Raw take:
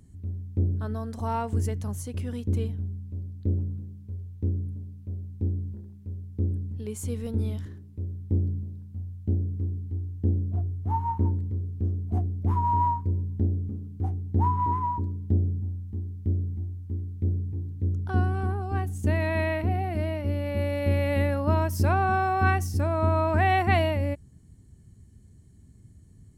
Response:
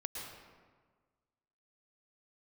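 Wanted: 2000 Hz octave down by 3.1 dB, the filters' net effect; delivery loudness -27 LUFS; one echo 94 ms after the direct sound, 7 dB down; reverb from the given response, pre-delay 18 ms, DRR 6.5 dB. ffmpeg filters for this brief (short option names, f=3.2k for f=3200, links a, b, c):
-filter_complex "[0:a]equalizer=f=2k:t=o:g=-4,aecho=1:1:94:0.447,asplit=2[a][b];[1:a]atrim=start_sample=2205,adelay=18[c];[b][c]afir=irnorm=-1:irlink=0,volume=-6.5dB[d];[a][d]amix=inputs=2:normalize=0,volume=2dB"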